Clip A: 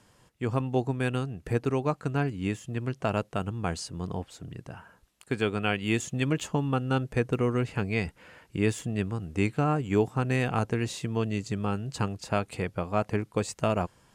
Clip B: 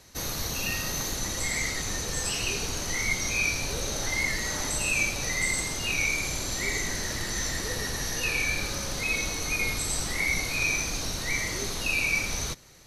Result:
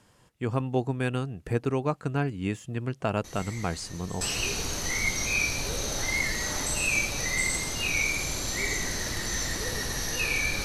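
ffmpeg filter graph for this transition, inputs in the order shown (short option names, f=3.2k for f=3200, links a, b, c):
-filter_complex "[1:a]asplit=2[a][b];[0:a]apad=whole_dur=10.64,atrim=end=10.64,atrim=end=4.212[c];[b]atrim=start=2.248:end=8.68[d];[a]atrim=start=1.28:end=2.25,asetpts=PTS-STARTPTS,volume=-14dB,afade=t=in:d=0.004:c=hsin,afade=t=out:st=0.966:d=0.004:c=hsin,adelay=3240[e];[c][d]acrossfade=d=0.004:c1=hsin:c2=hsin[f];[f][e]amix=inputs=2:normalize=0"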